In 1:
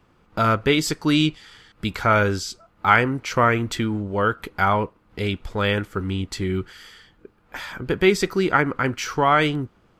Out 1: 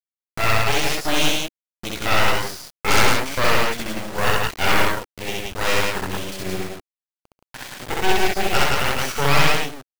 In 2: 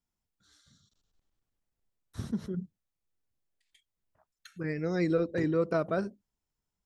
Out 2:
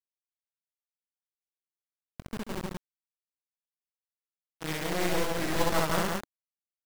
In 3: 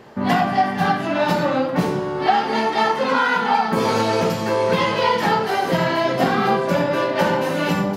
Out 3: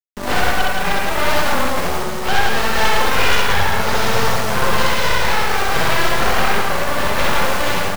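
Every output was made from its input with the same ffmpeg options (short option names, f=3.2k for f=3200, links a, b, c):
-filter_complex "[0:a]aresample=16000,aeval=exprs='sgn(val(0))*max(abs(val(0))-0.00891,0)':c=same,aresample=44100,anlmdn=0.398,acrossover=split=270[a][b];[a]acompressor=threshold=-35dB:ratio=6[c];[b]flanger=delay=16:depth=6.1:speed=2.1[d];[c][d]amix=inputs=2:normalize=0,acrusher=bits=5:mix=0:aa=0.000001,aeval=exprs='0.596*(cos(1*acos(clip(val(0)/0.596,-1,1)))-cos(1*PI/2))+0.168*(cos(4*acos(clip(val(0)/0.596,-1,1)))-cos(4*PI/2))+0.188*(cos(6*acos(clip(val(0)/0.596,-1,1)))-cos(6*PI/2))+0.299*(cos(8*acos(clip(val(0)/0.596,-1,1)))-cos(8*PI/2))':c=same,tremolo=f=0.67:d=0.3,adynamicequalizer=threshold=0.00794:dfrequency=300:dqfactor=2.9:tfrequency=300:tqfactor=2.9:attack=5:release=100:ratio=0.375:range=3.5:mode=cutabove:tftype=bell,asoftclip=type=tanh:threshold=-9dB,aecho=1:1:64.14|137|172:1|0.316|0.794"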